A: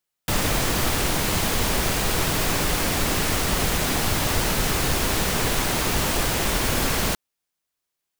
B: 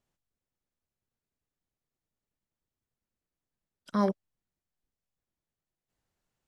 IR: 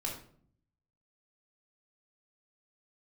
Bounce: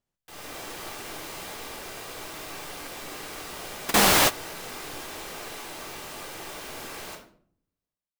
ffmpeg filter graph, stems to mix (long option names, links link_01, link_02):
-filter_complex "[0:a]lowshelf=frequency=87:gain=-6,dynaudnorm=framelen=110:gausssize=7:maxgain=11.5dB,bass=frequency=250:gain=-13,treble=frequency=4000:gain=-1,volume=-2.5dB,asplit=2[link_01][link_02];[link_02]volume=-22.5dB[link_03];[1:a]volume=-3dB,asplit=2[link_04][link_05];[link_05]apad=whole_len=361572[link_06];[link_01][link_06]sidechaingate=range=-33dB:threshold=-52dB:ratio=16:detection=peak[link_07];[2:a]atrim=start_sample=2205[link_08];[link_03][link_08]afir=irnorm=-1:irlink=0[link_09];[link_07][link_04][link_09]amix=inputs=3:normalize=0"